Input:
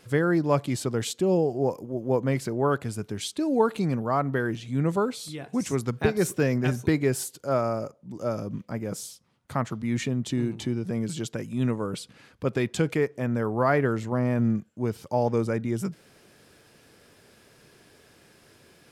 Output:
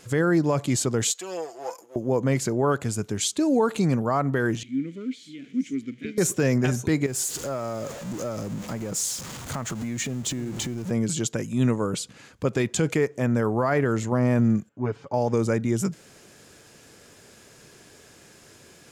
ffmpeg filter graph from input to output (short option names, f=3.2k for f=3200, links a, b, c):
-filter_complex "[0:a]asettb=1/sr,asplit=3[a][b][c];[a]atrim=end=1.124[d];[b]atrim=start=1.12:end=1.96,asetpts=PTS-STARTPTS,afade=t=in:d=0.004:c=qsin,afade=t=out:st=0.836:d=0.004:c=qsin,aeval=exprs='if(lt(val(0),0),0.708*val(0),val(0))':c=same,highpass=990,aecho=1:1:6:0.52,atrim=end_sample=37044[e];[c]atrim=start=1.956[f];[d][e]acrossfade=d=0.004:c1=hsin:c2=qsin[g];[g][f]acrossfade=d=0.004:c1=qsin:c2=hsin,asettb=1/sr,asplit=3[h][i][j];[h]atrim=end=4.634[k];[i]atrim=start=4.63:end=6.18,asetpts=PTS-STARTPTS,afade=t=in:d=0.004:c=qsin,afade=t=out:st=1.546:d=0.004:c=qsin,aeval=exprs='val(0)+0.5*0.0168*sgn(val(0))':c=same,asplit=3[l][m][n];[l]bandpass=f=270:t=q:w=8,volume=0dB[o];[m]bandpass=f=2.29k:t=q:w=8,volume=-6dB[p];[n]bandpass=f=3.01k:t=q:w=8,volume=-9dB[q];[o][p][q]amix=inputs=3:normalize=0,equalizer=f=820:t=o:w=0.3:g=-14.5[r];[j]atrim=start=6.176[s];[k][r]acrossfade=d=0.004:c1=hsin:c2=qsin[t];[t][s]acrossfade=d=0.004:c1=qsin:c2=hsin,asettb=1/sr,asplit=3[u][v][w];[u]atrim=end=7.064[x];[v]atrim=start=7.06:end=10.91,asetpts=PTS-STARTPTS,afade=t=in:d=0.004:c=qsin,afade=t=out:st=3.846:d=0.004:c=qsin,aeval=exprs='val(0)+0.5*0.015*sgn(val(0))':c=same,acompressor=threshold=-32dB:ratio=4:attack=3.2:release=140:knee=1:detection=peak,acrusher=bits=9:mode=log:mix=0:aa=0.000001[y];[w]atrim=start=10.906[z];[x][y]acrossfade=d=0.004:c1=hsin:c2=qsin[aa];[aa][z]acrossfade=d=0.004:c1=qsin:c2=hsin,asettb=1/sr,asplit=3[ab][ac][ad];[ab]atrim=end=14.694[ae];[ac]atrim=start=14.69:end=15.14,asetpts=PTS-STARTPTS,afade=t=in:d=0.004:c=qsin,afade=t=out:st=0.446:d=0.004:c=qsin,lowpass=1.9k,lowshelf=f=420:g=-7.5,aecho=1:1:7.2:0.87,atrim=end_sample=19845[af];[ad]atrim=start=15.136[ag];[ae][af]acrossfade=d=0.004:c1=hsin:c2=qsin[ah];[ah][ag]acrossfade=d=0.004:c1=qsin:c2=hsin,equalizer=f=6.9k:t=o:w=0.42:g=10,alimiter=limit=-17dB:level=0:latency=1:release=60,volume=4dB"